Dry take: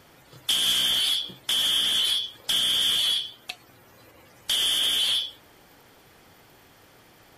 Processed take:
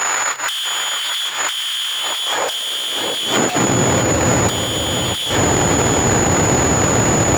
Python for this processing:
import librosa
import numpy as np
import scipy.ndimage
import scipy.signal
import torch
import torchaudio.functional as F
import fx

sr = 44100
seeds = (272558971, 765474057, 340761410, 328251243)

p1 = fx.halfwave_hold(x, sr)
p2 = fx.leveller(p1, sr, passes=5)
p3 = fx.bass_treble(p2, sr, bass_db=0, treble_db=-9)
p4 = fx.leveller(p3, sr, passes=5)
p5 = p4 + 10.0 ** (-22.0 / 20.0) * np.sin(2.0 * np.pi * 6900.0 * np.arange(len(p4)) / sr)
p6 = fx.high_shelf(p5, sr, hz=5100.0, db=-3.0)
p7 = fx.over_compress(p6, sr, threshold_db=-19.0, ratio=-0.5)
p8 = p7 + fx.echo_single(p7, sr, ms=657, db=-8.0, dry=0)
p9 = fx.filter_sweep_highpass(p8, sr, from_hz=1300.0, to_hz=77.0, start_s=1.81, end_s=4.26, q=1.1)
p10 = 10.0 ** (-13.5 / 20.0) * np.tanh(p9 / 10.0 ** (-13.5 / 20.0))
p11 = p9 + F.gain(torch.from_numpy(p10), -9.0).numpy()
p12 = fx.band_squash(p11, sr, depth_pct=40)
y = F.gain(torch.from_numpy(p12), -1.0).numpy()